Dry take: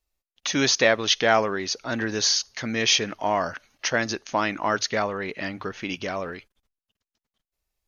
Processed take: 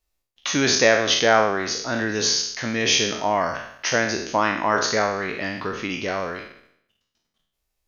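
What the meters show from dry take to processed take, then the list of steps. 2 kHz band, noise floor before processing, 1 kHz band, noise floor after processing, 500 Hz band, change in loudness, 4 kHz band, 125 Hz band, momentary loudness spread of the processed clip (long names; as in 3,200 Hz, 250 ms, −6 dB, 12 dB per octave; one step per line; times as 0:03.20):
+3.5 dB, below −85 dBFS, +3.5 dB, −78 dBFS, +3.5 dB, +2.5 dB, +1.5 dB, +2.5 dB, 11 LU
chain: peak hold with a decay on every bin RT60 0.70 s
dynamic equaliser 4,000 Hz, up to −4 dB, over −33 dBFS, Q 0.78
level +1.5 dB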